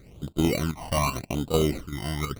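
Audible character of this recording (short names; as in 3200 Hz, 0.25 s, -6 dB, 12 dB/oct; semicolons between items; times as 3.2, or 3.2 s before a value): chopped level 2.6 Hz, depth 60%, duty 85%; aliases and images of a low sample rate 1700 Hz, jitter 0%; phasing stages 12, 0.84 Hz, lowest notch 400–2000 Hz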